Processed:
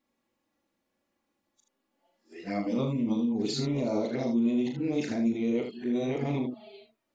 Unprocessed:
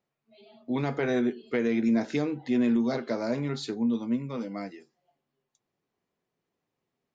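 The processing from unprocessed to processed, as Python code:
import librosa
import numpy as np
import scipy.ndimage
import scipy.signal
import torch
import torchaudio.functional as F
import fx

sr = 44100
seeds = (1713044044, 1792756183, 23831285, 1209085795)

p1 = x[::-1].copy()
p2 = fx.over_compress(p1, sr, threshold_db=-33.0, ratio=-0.5)
p3 = p1 + (p2 * librosa.db_to_amplitude(2.0))
p4 = fx.env_flanger(p3, sr, rest_ms=3.6, full_db=-20.5)
p5 = fx.room_early_taps(p4, sr, ms=(38, 78), db=(-6.0, -7.0))
y = p5 * librosa.db_to_amplitude(-5.0)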